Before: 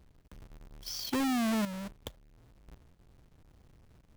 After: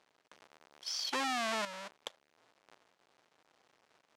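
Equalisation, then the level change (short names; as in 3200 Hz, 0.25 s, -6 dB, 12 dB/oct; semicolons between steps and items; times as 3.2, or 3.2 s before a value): BPF 670–6800 Hz; +3.0 dB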